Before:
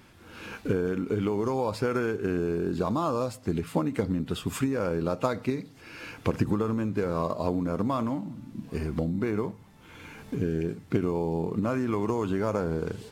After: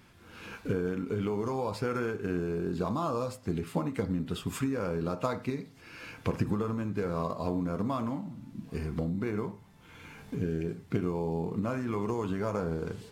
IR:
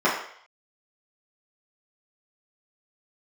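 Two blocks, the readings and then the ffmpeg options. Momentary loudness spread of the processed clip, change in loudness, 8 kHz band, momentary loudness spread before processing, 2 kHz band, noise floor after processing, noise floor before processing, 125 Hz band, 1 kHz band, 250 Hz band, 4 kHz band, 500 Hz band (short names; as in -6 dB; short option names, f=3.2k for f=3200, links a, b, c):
9 LU, -4.0 dB, -3.5 dB, 10 LU, -3.5 dB, -55 dBFS, -52 dBFS, -2.5 dB, -3.5 dB, -4.0 dB, -3.5 dB, -4.5 dB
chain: -filter_complex "[0:a]asplit=2[a][b];[1:a]atrim=start_sample=2205,afade=t=out:st=0.16:d=0.01,atrim=end_sample=7497[c];[b][c]afir=irnorm=-1:irlink=0,volume=-27dB[d];[a][d]amix=inputs=2:normalize=0,volume=-3.5dB"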